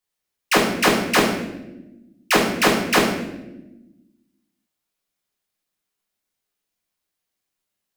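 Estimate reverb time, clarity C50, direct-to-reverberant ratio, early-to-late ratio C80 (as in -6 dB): 1.0 s, 3.5 dB, -4.0 dB, 7.0 dB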